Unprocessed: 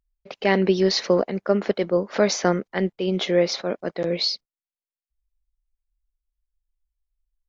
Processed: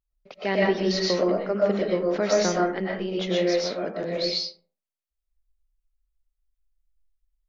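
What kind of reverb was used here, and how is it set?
comb and all-pass reverb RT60 0.45 s, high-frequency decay 0.5×, pre-delay 80 ms, DRR −4 dB
level −7 dB

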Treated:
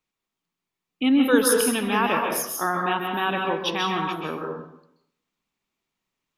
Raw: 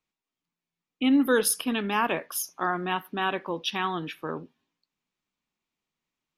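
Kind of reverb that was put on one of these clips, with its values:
dense smooth reverb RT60 0.74 s, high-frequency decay 0.6×, pre-delay 120 ms, DRR 1 dB
level +2 dB

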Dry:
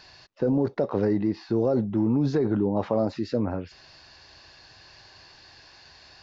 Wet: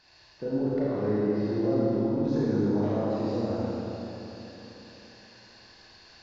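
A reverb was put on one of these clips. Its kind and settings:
four-comb reverb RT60 3.8 s, combs from 26 ms, DRR −9 dB
level −11.5 dB

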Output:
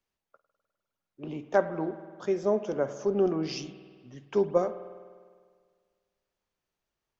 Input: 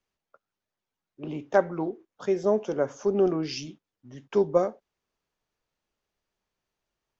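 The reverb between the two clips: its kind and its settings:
spring reverb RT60 1.8 s, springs 50 ms, chirp 75 ms, DRR 11.5 dB
level −2.5 dB

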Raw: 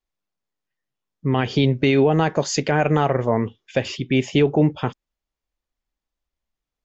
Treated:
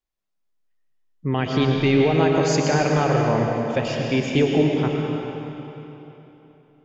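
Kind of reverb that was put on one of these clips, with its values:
comb and all-pass reverb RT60 3.4 s, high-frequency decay 0.85×, pre-delay 70 ms, DRR 0 dB
level −3 dB

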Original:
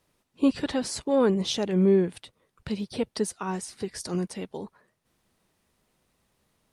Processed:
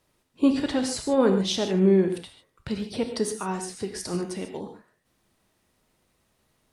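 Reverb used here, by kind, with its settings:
reverb whose tail is shaped and stops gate 170 ms flat, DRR 5.5 dB
level +1 dB

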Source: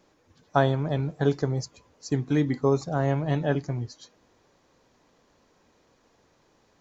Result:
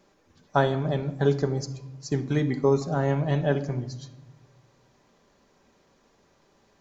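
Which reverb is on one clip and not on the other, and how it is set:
rectangular room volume 3,800 cubic metres, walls furnished, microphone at 1.2 metres

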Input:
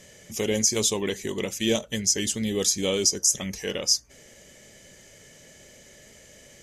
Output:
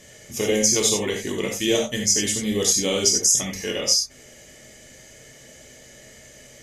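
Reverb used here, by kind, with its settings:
reverb whose tail is shaped and stops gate 110 ms flat, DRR −0.5 dB
level +1 dB

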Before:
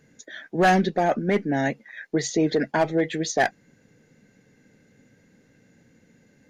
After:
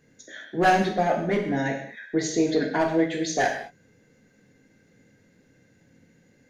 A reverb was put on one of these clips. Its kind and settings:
reverb whose tail is shaped and stops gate 250 ms falling, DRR 0 dB
level −4 dB

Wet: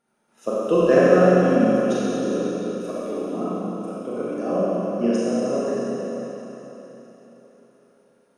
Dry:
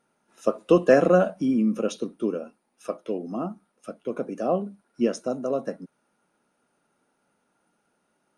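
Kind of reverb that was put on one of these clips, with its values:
four-comb reverb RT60 3.9 s, combs from 30 ms, DRR −8.5 dB
level −4.5 dB

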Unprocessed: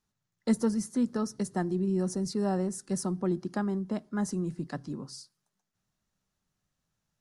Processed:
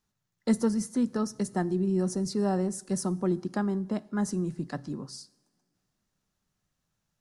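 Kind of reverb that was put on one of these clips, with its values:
coupled-rooms reverb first 0.79 s, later 3.1 s, from −20 dB, DRR 19.5 dB
level +1.5 dB

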